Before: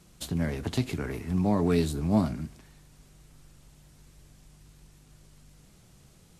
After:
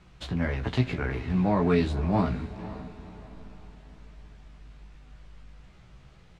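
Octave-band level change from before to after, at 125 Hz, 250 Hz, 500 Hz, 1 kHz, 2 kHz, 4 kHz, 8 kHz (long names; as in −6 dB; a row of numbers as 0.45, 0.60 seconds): +2.0 dB, 0.0 dB, +2.0 dB, +4.5 dB, +5.5 dB, 0.0 dB, below −10 dB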